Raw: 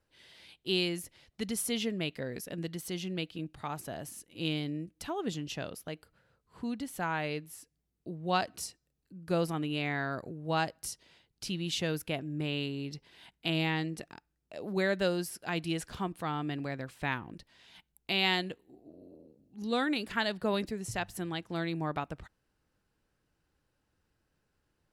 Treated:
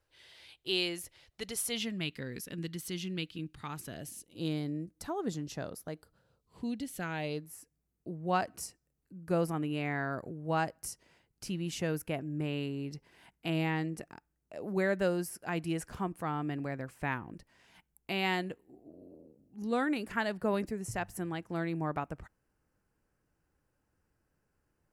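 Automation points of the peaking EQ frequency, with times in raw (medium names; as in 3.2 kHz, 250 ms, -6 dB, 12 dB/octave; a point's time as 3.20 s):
peaking EQ -12.5 dB 0.8 oct
1.55 s 210 Hz
2.14 s 650 Hz
3.84 s 650 Hz
4.50 s 2.9 kHz
5.90 s 2.9 kHz
7.07 s 880 Hz
7.53 s 3.7 kHz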